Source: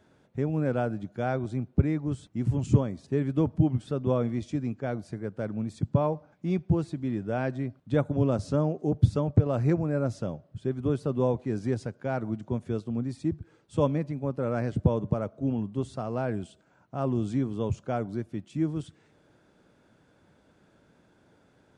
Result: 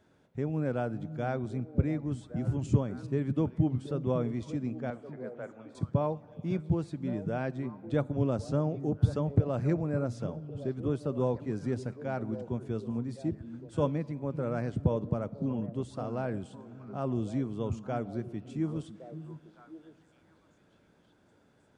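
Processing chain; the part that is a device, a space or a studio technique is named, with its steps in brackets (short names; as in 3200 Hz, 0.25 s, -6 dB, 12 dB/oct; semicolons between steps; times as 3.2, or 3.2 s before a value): 4.9–5.75 three-band isolator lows -22 dB, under 440 Hz, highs -24 dB, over 2900 Hz; compressed reverb return (on a send at -10 dB: reverb RT60 2.2 s, pre-delay 13 ms + compressor, threshold -37 dBFS, peak gain reduction 18.5 dB); on the sum: delay with a stepping band-pass 0.558 s, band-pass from 180 Hz, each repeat 1.4 oct, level -8 dB; gain -4 dB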